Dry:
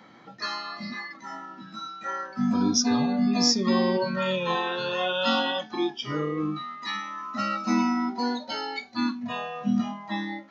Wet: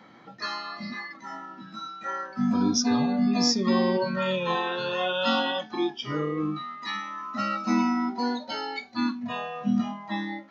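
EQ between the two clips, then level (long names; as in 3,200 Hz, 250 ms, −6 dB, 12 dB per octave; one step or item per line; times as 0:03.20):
high-shelf EQ 6,100 Hz −5.5 dB
0.0 dB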